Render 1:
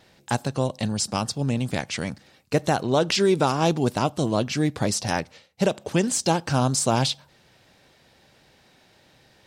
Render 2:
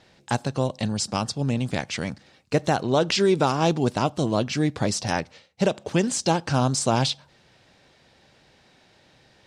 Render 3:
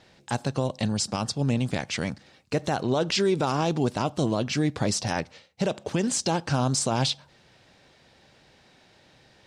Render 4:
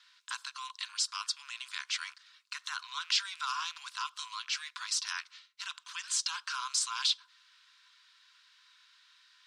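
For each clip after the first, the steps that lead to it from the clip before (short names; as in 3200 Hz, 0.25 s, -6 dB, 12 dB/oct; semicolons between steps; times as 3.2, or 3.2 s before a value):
LPF 8000 Hz 12 dB/oct
limiter -15 dBFS, peak gain reduction 6 dB
rattling part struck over -34 dBFS, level -38 dBFS; rippled Chebyshev high-pass 990 Hz, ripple 6 dB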